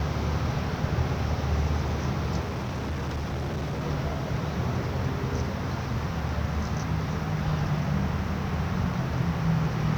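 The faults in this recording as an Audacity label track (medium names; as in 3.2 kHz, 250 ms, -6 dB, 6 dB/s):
2.410000	3.840000	clipped -27 dBFS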